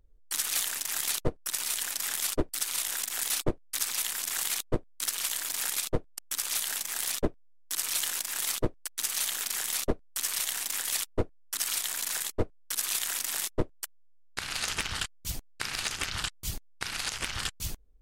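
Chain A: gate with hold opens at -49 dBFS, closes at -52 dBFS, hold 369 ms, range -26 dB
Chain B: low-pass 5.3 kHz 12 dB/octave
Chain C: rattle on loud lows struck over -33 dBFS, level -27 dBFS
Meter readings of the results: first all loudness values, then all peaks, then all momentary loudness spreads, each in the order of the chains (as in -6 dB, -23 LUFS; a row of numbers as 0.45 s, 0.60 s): -30.5 LUFS, -35.0 LUFS, -30.5 LUFS; -17.5 dBFS, -17.5 dBFS, -16.0 dBFS; 7 LU, 5 LU, 7 LU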